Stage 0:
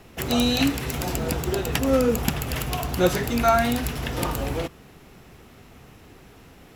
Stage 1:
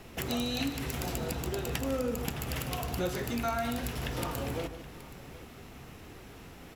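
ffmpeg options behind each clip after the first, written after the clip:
-af "bandreject=f=52.55:t=h:w=4,bandreject=f=105.1:t=h:w=4,bandreject=f=157.65:t=h:w=4,bandreject=f=210.2:t=h:w=4,bandreject=f=262.75:t=h:w=4,bandreject=f=315.3:t=h:w=4,bandreject=f=367.85:t=h:w=4,bandreject=f=420.4:t=h:w=4,bandreject=f=472.95:t=h:w=4,bandreject=f=525.5:t=h:w=4,bandreject=f=578.05:t=h:w=4,bandreject=f=630.6:t=h:w=4,bandreject=f=683.15:t=h:w=4,bandreject=f=735.7:t=h:w=4,bandreject=f=788.25:t=h:w=4,bandreject=f=840.8:t=h:w=4,bandreject=f=893.35:t=h:w=4,bandreject=f=945.9:t=h:w=4,bandreject=f=998.45:t=h:w=4,bandreject=f=1051:t=h:w=4,bandreject=f=1103.55:t=h:w=4,bandreject=f=1156.1:t=h:w=4,bandreject=f=1208.65:t=h:w=4,bandreject=f=1261.2:t=h:w=4,bandreject=f=1313.75:t=h:w=4,bandreject=f=1366.3:t=h:w=4,bandreject=f=1418.85:t=h:w=4,bandreject=f=1471.4:t=h:w=4,bandreject=f=1523.95:t=h:w=4,bandreject=f=1576.5:t=h:w=4,bandreject=f=1629.05:t=h:w=4,bandreject=f=1681.6:t=h:w=4,bandreject=f=1734.15:t=h:w=4,bandreject=f=1786.7:t=h:w=4,bandreject=f=1839.25:t=h:w=4,bandreject=f=1891.8:t=h:w=4,acompressor=threshold=0.0178:ratio=2.5,aecho=1:1:151|773:0.251|0.133"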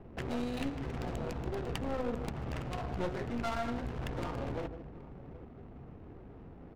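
-af "adynamicsmooth=sensitivity=5.5:basefreq=590,aeval=exprs='clip(val(0),-1,0.0106)':c=same"

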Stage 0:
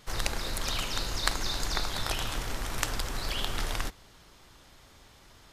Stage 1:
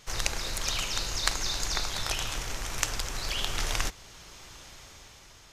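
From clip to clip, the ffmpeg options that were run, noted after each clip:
-af "equalizer=f=250:t=o:w=0.67:g=-4,equalizer=f=2500:t=o:w=0.67:g=4,equalizer=f=6300:t=o:w=0.67:g=8,dynaudnorm=f=240:g=9:m=3.76,volume=0.891"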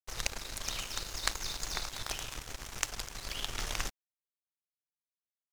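-af "aeval=exprs='sgn(val(0))*max(abs(val(0))-0.0178,0)':c=same,volume=0.668"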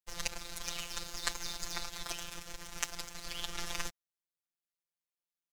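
-af "afftfilt=real='hypot(re,im)*cos(PI*b)':imag='0':win_size=1024:overlap=0.75,volume=1.12"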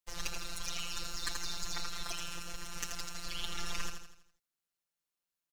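-filter_complex "[0:a]asoftclip=type=tanh:threshold=0.0596,asplit=2[s0][s1];[s1]aecho=0:1:82|164|246|328|410|492:0.501|0.231|0.106|0.0488|0.0224|0.0103[s2];[s0][s2]amix=inputs=2:normalize=0,volume=1.26"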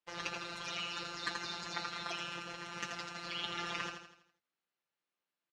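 -filter_complex "[0:a]highpass=160,lowpass=3100,asplit=2[s0][s1];[s1]adelay=15,volume=0.355[s2];[s0][s2]amix=inputs=2:normalize=0,volume=1.58"

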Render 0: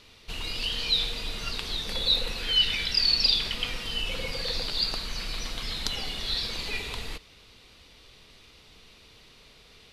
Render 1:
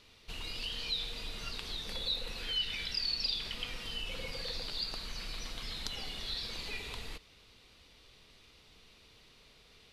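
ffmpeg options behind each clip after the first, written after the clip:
-af "acompressor=threshold=0.0251:ratio=1.5,volume=0.473"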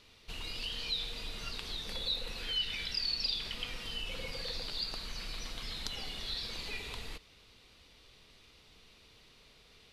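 -af anull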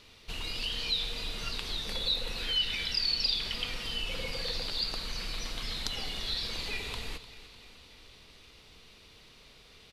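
-af "aecho=1:1:301|602|903|1204|1505|1806:0.158|0.0951|0.0571|0.0342|0.0205|0.0123,volume=1.68"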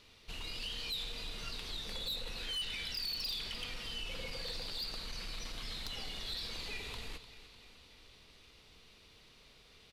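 -af "asoftclip=type=tanh:threshold=0.0376,volume=0.562"

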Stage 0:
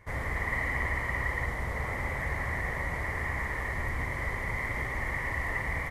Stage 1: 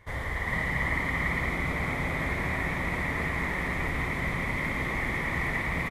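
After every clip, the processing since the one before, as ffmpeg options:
-filter_complex "[0:a]equalizer=f=3500:t=o:w=0.4:g=9.5,asplit=9[s0][s1][s2][s3][s4][s5][s6][s7][s8];[s1]adelay=392,afreqshift=100,volume=0.668[s9];[s2]adelay=784,afreqshift=200,volume=0.389[s10];[s3]adelay=1176,afreqshift=300,volume=0.224[s11];[s4]adelay=1568,afreqshift=400,volume=0.13[s12];[s5]adelay=1960,afreqshift=500,volume=0.0759[s13];[s6]adelay=2352,afreqshift=600,volume=0.0437[s14];[s7]adelay=2744,afreqshift=700,volume=0.0254[s15];[s8]adelay=3136,afreqshift=800,volume=0.0148[s16];[s0][s9][s10][s11][s12][s13][s14][s15][s16]amix=inputs=9:normalize=0"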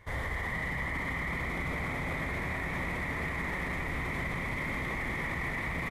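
-af "alimiter=level_in=1.26:limit=0.0631:level=0:latency=1:release=23,volume=0.794"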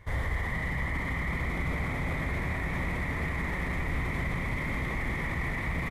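-af "lowshelf=f=170:g=7.5"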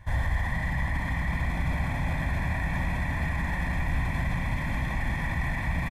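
-af "aecho=1:1:1.2:0.74"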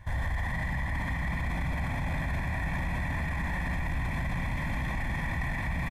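-af "alimiter=limit=0.0631:level=0:latency=1:release=10"

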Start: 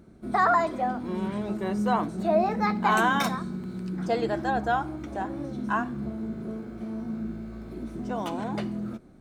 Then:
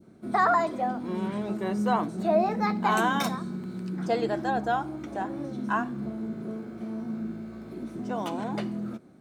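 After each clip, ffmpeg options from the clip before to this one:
-af "highpass=120,adynamicequalizer=threshold=0.0158:dfrequency=1600:dqfactor=0.82:tfrequency=1600:tqfactor=0.82:attack=5:release=100:ratio=0.375:range=2.5:mode=cutabove:tftype=bell"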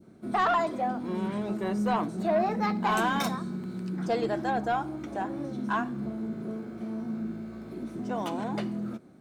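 -af "asoftclip=type=tanh:threshold=0.119"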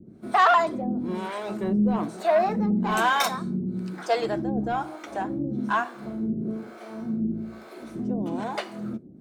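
-filter_complex "[0:a]acrossover=split=460[s0][s1];[s0]aeval=exprs='val(0)*(1-1/2+1/2*cos(2*PI*1.1*n/s))':c=same[s2];[s1]aeval=exprs='val(0)*(1-1/2-1/2*cos(2*PI*1.1*n/s))':c=same[s3];[s2][s3]amix=inputs=2:normalize=0,volume=2.51"

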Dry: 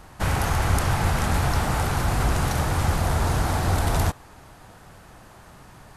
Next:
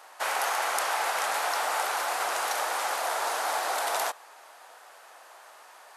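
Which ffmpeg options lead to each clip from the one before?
-af "highpass=f=550:w=0.5412,highpass=f=550:w=1.3066"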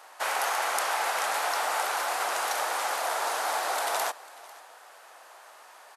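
-af "aecho=1:1:496:0.0891"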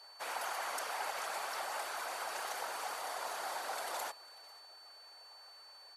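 -af "afftfilt=real='hypot(re,im)*cos(2*PI*random(0))':imag='hypot(re,im)*sin(2*PI*random(1))':win_size=512:overlap=0.75,aeval=exprs='val(0)+0.00355*sin(2*PI*4500*n/s)':c=same,volume=0.531"

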